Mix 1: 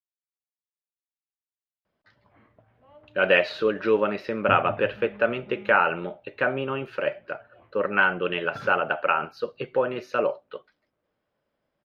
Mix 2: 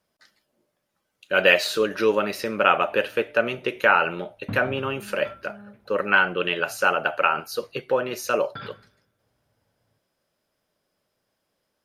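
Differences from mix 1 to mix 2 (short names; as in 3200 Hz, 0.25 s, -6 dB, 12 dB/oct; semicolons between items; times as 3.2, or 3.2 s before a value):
speech: entry -1.85 s; master: remove air absorption 310 m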